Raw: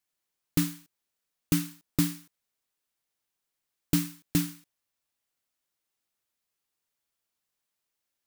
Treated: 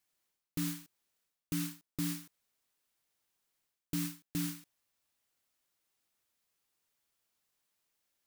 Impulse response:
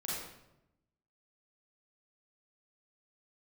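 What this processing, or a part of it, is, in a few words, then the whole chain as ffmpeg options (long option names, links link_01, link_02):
compression on the reversed sound: -af "areverse,acompressor=threshold=-36dB:ratio=6,areverse,volume=2.5dB"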